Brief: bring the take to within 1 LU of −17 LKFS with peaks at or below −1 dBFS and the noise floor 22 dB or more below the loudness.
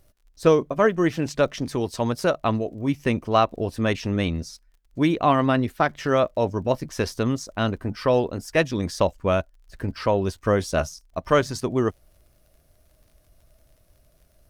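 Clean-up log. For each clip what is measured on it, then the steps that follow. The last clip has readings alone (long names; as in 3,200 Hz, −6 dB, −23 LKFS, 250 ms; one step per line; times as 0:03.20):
crackle rate 35 per second; integrated loudness −23.5 LKFS; sample peak −5.0 dBFS; target loudness −17.0 LKFS
→ click removal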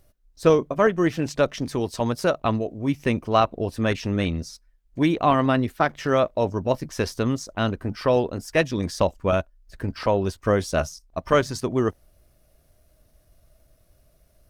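crackle rate 0.48 per second; integrated loudness −24.0 LKFS; sample peak −5.0 dBFS; target loudness −17.0 LKFS
→ level +7 dB
brickwall limiter −1 dBFS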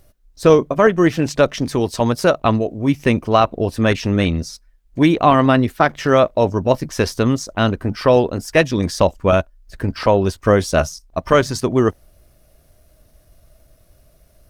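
integrated loudness −17.0 LKFS; sample peak −1.0 dBFS; background noise floor −55 dBFS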